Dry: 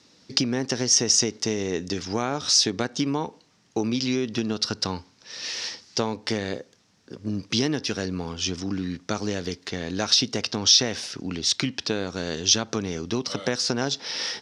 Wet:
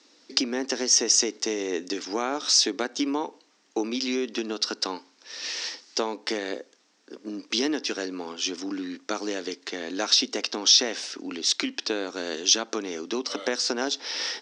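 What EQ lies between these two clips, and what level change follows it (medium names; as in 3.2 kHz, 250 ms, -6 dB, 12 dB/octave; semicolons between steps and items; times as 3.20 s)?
elliptic band-pass 280–8200 Hz, stop band 40 dB; 0.0 dB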